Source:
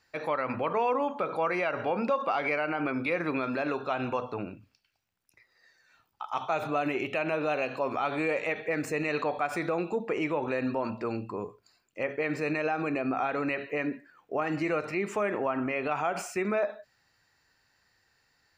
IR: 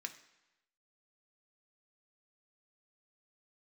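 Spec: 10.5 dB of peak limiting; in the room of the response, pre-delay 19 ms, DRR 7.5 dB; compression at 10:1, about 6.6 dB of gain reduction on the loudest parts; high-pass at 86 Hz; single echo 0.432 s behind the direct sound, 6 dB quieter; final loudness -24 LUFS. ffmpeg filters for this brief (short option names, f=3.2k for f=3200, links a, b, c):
-filter_complex "[0:a]highpass=86,acompressor=threshold=-30dB:ratio=10,alimiter=level_in=6dB:limit=-24dB:level=0:latency=1,volume=-6dB,aecho=1:1:432:0.501,asplit=2[a][b];[1:a]atrim=start_sample=2205,adelay=19[c];[b][c]afir=irnorm=-1:irlink=0,volume=-5.5dB[d];[a][d]amix=inputs=2:normalize=0,volume=14.5dB"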